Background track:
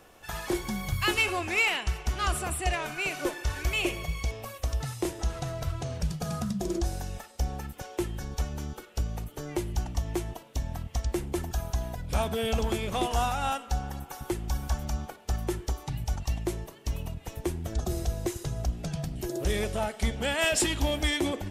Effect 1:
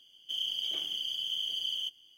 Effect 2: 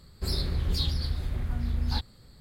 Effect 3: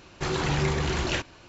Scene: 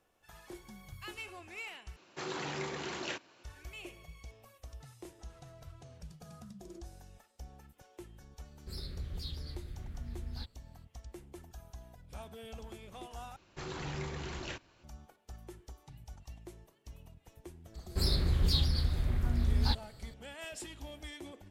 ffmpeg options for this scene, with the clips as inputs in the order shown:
ffmpeg -i bed.wav -i cue0.wav -i cue1.wav -i cue2.wav -filter_complex "[3:a]asplit=2[link_01][link_02];[2:a]asplit=2[link_03][link_04];[0:a]volume=-19dB[link_05];[link_01]highpass=230[link_06];[link_03]equalizer=frequency=890:width_type=o:width=0.61:gain=-8[link_07];[link_05]asplit=3[link_08][link_09][link_10];[link_08]atrim=end=1.964[link_11];[link_06]atrim=end=1.48,asetpts=PTS-STARTPTS,volume=-10dB[link_12];[link_09]atrim=start=3.436:end=13.364[link_13];[link_02]atrim=end=1.48,asetpts=PTS-STARTPTS,volume=-14dB[link_14];[link_10]atrim=start=14.836[link_15];[link_07]atrim=end=2.4,asetpts=PTS-STARTPTS,volume=-13.5dB,afade=type=in:duration=0.004:curve=hsin,afade=type=out:start_time=2.396:duration=0.004:curve=hsin,adelay=8450[link_16];[link_04]atrim=end=2.4,asetpts=PTS-STARTPTS,volume=-0.5dB,afade=type=in:duration=0.004:curve=hsin,afade=type=out:start_time=2.396:duration=0.004:curve=hsin,adelay=17740[link_17];[link_11][link_12]acrossfade=duration=0.004:curve1=hsin:curve2=hsin[link_18];[link_18][link_13]acrossfade=duration=0.004:curve1=hsin:curve2=hsin[link_19];[link_19][link_14]acrossfade=duration=0.004:curve1=hsin:curve2=hsin[link_20];[link_20][link_15]acrossfade=duration=0.004:curve1=hsin:curve2=hsin[link_21];[link_21][link_16][link_17]amix=inputs=3:normalize=0" out.wav

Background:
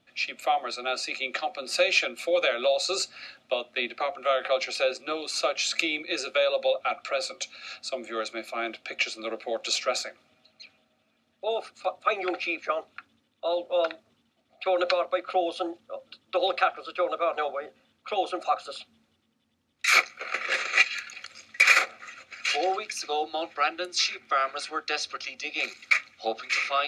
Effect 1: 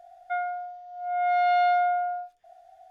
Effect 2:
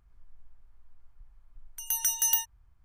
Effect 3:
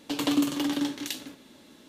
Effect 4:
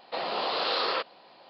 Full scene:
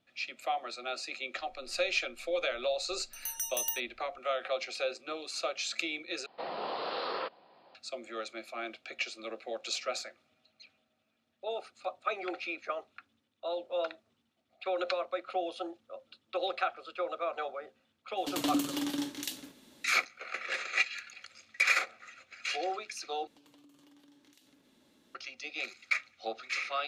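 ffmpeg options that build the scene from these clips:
ffmpeg -i bed.wav -i cue0.wav -i cue1.wav -i cue2.wav -i cue3.wav -filter_complex "[3:a]asplit=2[link_01][link_02];[0:a]volume=-8dB[link_03];[4:a]highshelf=frequency=2500:gain=-10.5[link_04];[link_01]highshelf=frequency=4800:gain=6[link_05];[link_02]acompressor=threshold=-48dB:ratio=6:attack=3.2:release=140:knee=1:detection=peak[link_06];[link_03]asplit=3[link_07][link_08][link_09];[link_07]atrim=end=6.264[link_10];[link_04]atrim=end=1.49,asetpts=PTS-STARTPTS,volume=-5dB[link_11];[link_08]atrim=start=7.746:end=23.274[link_12];[link_06]atrim=end=1.88,asetpts=PTS-STARTPTS,volume=-12.5dB[link_13];[link_09]atrim=start=25.146[link_14];[2:a]atrim=end=2.84,asetpts=PTS-STARTPTS,volume=-8.5dB,afade=type=in:duration=0.004:curve=hsin,afade=type=out:start_time=2.836:duration=0.004:curve=hsin,adelay=1350[link_15];[link_05]atrim=end=1.88,asetpts=PTS-STARTPTS,volume=-6.5dB,afade=type=in:duration=0.004:curve=hsin,afade=type=out:start_time=1.876:duration=0.004:curve=hsin,adelay=18170[link_16];[link_10][link_11]acrossfade=duration=0.004:curve1=hsin:curve2=hsin[link_17];[link_17][link_12]acrossfade=duration=0.004:curve1=hsin:curve2=hsin[link_18];[link_18][link_13]acrossfade=duration=0.004:curve1=hsin:curve2=hsin[link_19];[link_19][link_14]acrossfade=duration=0.004:curve1=hsin:curve2=hsin[link_20];[link_20][link_15][link_16]amix=inputs=3:normalize=0" out.wav

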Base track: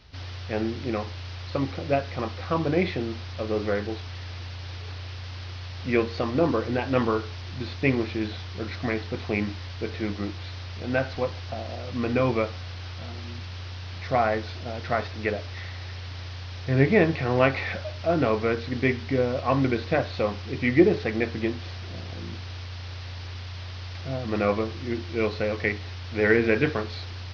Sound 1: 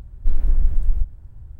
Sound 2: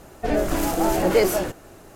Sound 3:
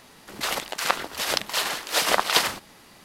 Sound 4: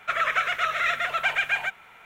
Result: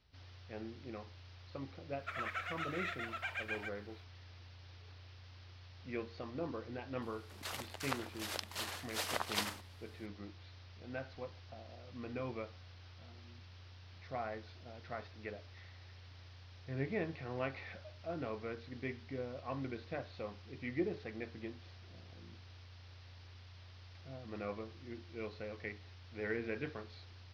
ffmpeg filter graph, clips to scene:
ffmpeg -i bed.wav -i cue0.wav -i cue1.wav -i cue2.wav -i cue3.wav -filter_complex "[0:a]volume=-18.5dB[link_01];[4:a]atrim=end=2.05,asetpts=PTS-STARTPTS,volume=-17dB,afade=type=in:duration=0.004:curve=hsin,afade=type=out:start_time=2.046:duration=0.004:curve=hsin,adelay=1990[link_02];[3:a]atrim=end=3.04,asetpts=PTS-STARTPTS,volume=-16.5dB,afade=type=in:duration=0.004:curve=hsin,afade=type=out:start_time=3.036:duration=0.004:curve=hsin,adelay=7020[link_03];[link_01][link_02][link_03]amix=inputs=3:normalize=0" out.wav

